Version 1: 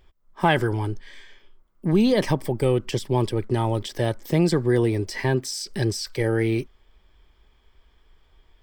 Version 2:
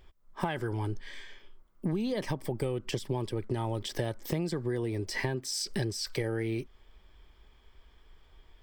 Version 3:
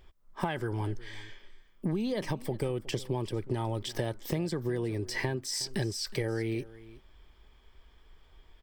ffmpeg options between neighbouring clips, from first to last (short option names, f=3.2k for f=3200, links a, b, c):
-af "acompressor=threshold=-28dB:ratio=12"
-af "aecho=1:1:366:0.112"